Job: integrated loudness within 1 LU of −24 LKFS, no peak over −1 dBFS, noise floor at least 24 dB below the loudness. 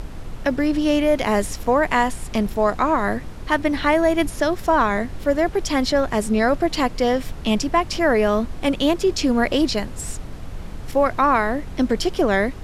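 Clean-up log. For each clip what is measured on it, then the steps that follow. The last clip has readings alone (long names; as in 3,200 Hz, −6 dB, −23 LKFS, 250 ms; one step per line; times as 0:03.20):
background noise floor −34 dBFS; target noise floor −45 dBFS; integrated loudness −20.5 LKFS; sample peak −5.5 dBFS; target loudness −24.0 LKFS
→ noise reduction from a noise print 11 dB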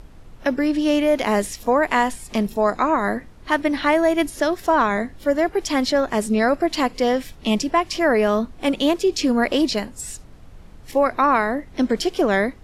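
background noise floor −43 dBFS; target noise floor −45 dBFS
→ noise reduction from a noise print 6 dB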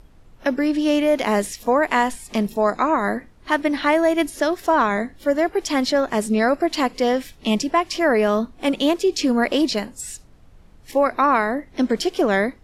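background noise floor −49 dBFS; integrated loudness −20.5 LKFS; sample peak −5.5 dBFS; target loudness −24.0 LKFS
→ level −3.5 dB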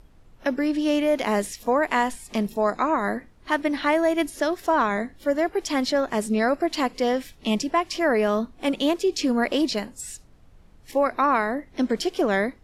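integrated loudness −24.0 LKFS; sample peak −9.0 dBFS; background noise floor −52 dBFS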